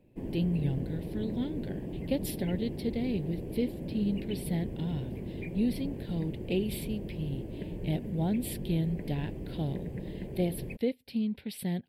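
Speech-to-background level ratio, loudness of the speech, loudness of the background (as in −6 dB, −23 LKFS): 4.5 dB, −34.5 LKFS, −39.0 LKFS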